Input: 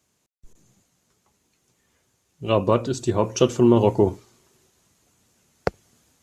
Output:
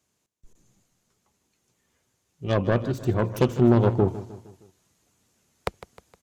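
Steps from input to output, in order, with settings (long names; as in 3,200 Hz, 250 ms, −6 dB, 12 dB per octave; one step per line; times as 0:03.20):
phase distortion by the signal itself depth 0.34 ms
0:02.44–0:04.08: bass and treble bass +7 dB, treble −7 dB
repeating echo 155 ms, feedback 48%, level −15 dB
level −4.5 dB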